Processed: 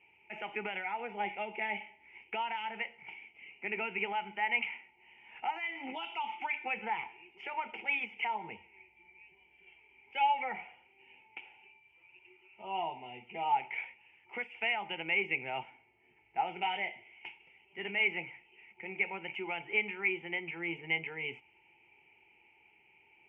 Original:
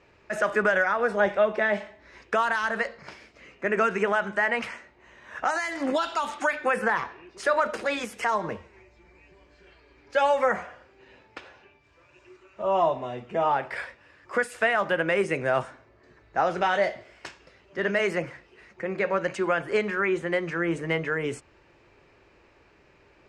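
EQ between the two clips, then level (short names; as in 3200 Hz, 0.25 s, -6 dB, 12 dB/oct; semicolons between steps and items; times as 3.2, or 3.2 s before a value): vowel filter u; synth low-pass 3000 Hz, resonance Q 7.7; fixed phaser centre 1100 Hz, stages 6; +7.0 dB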